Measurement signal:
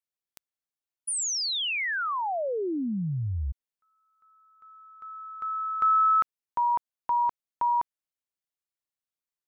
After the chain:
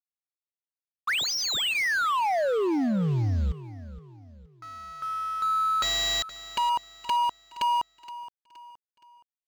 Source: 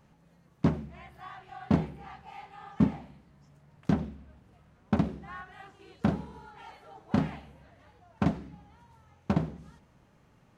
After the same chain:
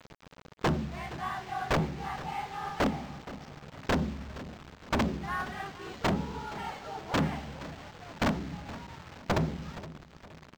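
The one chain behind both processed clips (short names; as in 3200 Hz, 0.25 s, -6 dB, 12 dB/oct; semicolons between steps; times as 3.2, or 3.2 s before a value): notch 2500 Hz, Q 23; in parallel at +2.5 dB: compressor 6:1, threshold -37 dBFS; on the sum: wrapped overs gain 18 dB; requantised 8-bit, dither none; hard clip -25.5 dBFS; on a send: feedback echo 0.47 s, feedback 40%, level -16 dB; on the sum: decimation joined by straight lines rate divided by 4×; gain +2.5 dB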